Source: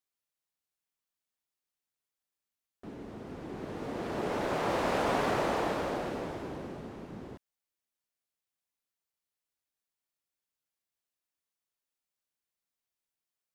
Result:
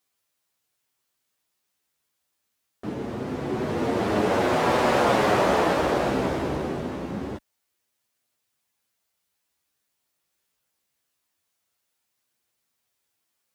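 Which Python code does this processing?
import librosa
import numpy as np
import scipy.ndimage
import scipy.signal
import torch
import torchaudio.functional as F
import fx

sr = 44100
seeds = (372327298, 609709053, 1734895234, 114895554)

p1 = scipy.signal.sosfilt(scipy.signal.butter(2, 41.0, 'highpass', fs=sr, output='sos'), x)
p2 = fx.rider(p1, sr, range_db=4, speed_s=0.5)
p3 = p1 + F.gain(torch.from_numpy(p2), 1.5).numpy()
p4 = fx.chorus_voices(p3, sr, voices=2, hz=0.24, base_ms=12, depth_ms=4.0, mix_pct=40)
y = F.gain(torch.from_numpy(p4), 6.5).numpy()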